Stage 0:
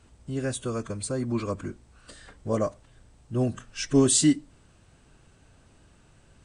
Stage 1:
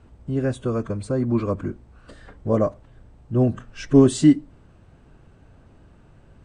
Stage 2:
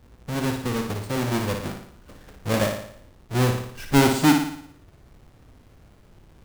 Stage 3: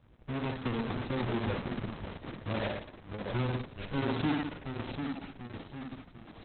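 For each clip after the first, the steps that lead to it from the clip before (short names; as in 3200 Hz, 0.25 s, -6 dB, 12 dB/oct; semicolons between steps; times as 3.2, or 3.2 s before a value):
LPF 1000 Hz 6 dB/oct; gain +7 dB
half-waves squared off; on a send: flutter echo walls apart 9.8 m, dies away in 0.65 s; on the sum: gain -7 dB
limiter -19 dBFS, peak gain reduction 11.5 dB; echoes that change speed 0.49 s, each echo -1 st, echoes 3, each echo -6 dB; gain -6 dB; Opus 6 kbps 48000 Hz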